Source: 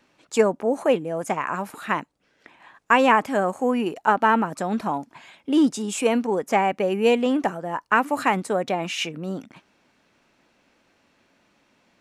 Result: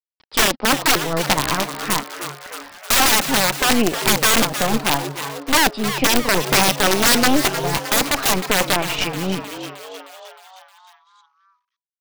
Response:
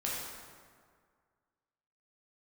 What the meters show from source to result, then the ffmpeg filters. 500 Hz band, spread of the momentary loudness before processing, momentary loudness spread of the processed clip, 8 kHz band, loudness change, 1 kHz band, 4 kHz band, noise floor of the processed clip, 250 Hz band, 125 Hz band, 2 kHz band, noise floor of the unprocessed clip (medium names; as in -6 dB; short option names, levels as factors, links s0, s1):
-0.5 dB, 10 LU, 16 LU, +18.0 dB, +5.5 dB, +1.5 dB, +16.0 dB, -80 dBFS, +1.5 dB, +8.5 dB, +7.0 dB, -65 dBFS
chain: -filter_complex "[0:a]agate=range=0.0224:threshold=0.00126:ratio=3:detection=peak,aresample=11025,acrusher=bits=7:mix=0:aa=0.000001,aresample=44100,aeval=exprs='0.75*(cos(1*acos(clip(val(0)/0.75,-1,1)))-cos(1*PI/2))+0.0168*(cos(3*acos(clip(val(0)/0.75,-1,1)))-cos(3*PI/2))+0.299*(cos(4*acos(clip(val(0)/0.75,-1,1)))-cos(4*PI/2))+0.0106*(cos(7*acos(clip(val(0)/0.75,-1,1)))-cos(7*PI/2))+0.0531*(cos(8*acos(clip(val(0)/0.75,-1,1)))-cos(8*PI/2))':c=same,aeval=exprs='(mod(3.35*val(0)+1,2)-1)/3.35':c=same,aphaser=in_gain=1:out_gain=1:delay=4:decay=0.3:speed=0.76:type=sinusoidal,asplit=2[s0][s1];[s1]asplit=7[s2][s3][s4][s5][s6][s7][s8];[s2]adelay=310,afreqshift=140,volume=0.299[s9];[s3]adelay=620,afreqshift=280,volume=0.18[s10];[s4]adelay=930,afreqshift=420,volume=0.107[s11];[s5]adelay=1240,afreqshift=560,volume=0.0646[s12];[s6]adelay=1550,afreqshift=700,volume=0.0389[s13];[s7]adelay=1860,afreqshift=840,volume=0.0232[s14];[s8]adelay=2170,afreqshift=980,volume=0.014[s15];[s9][s10][s11][s12][s13][s14][s15]amix=inputs=7:normalize=0[s16];[s0][s16]amix=inputs=2:normalize=0,volume=1.58"